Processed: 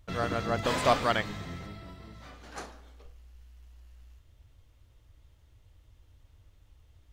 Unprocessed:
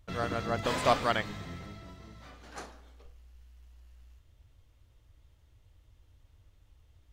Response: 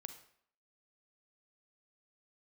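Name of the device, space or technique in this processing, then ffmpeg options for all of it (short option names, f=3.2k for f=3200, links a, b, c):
parallel distortion: -filter_complex "[0:a]asettb=1/sr,asplit=3[a][b][c];[a]atrim=end=1.674[d];[b]atrim=start=1.67:end=2.14,asetpts=PTS-STARTPTS,afade=t=in:d=0.004:c=qsin,afade=t=out:st=0.466:d=0.004:c=qsin,equalizer=f=6.4k:w=6.3:g=-13[e];[c]atrim=start=2.136[f];[d][e]acrossfade=d=0.004:c1=hsin:c2=qsin[g];[g][f]acrossfade=d=0.004:c1=qsin:c2=hsin,asplit=2[h][i];[i]asoftclip=type=hard:threshold=-24.5dB,volume=-10.5dB[j];[h][j]amix=inputs=2:normalize=0"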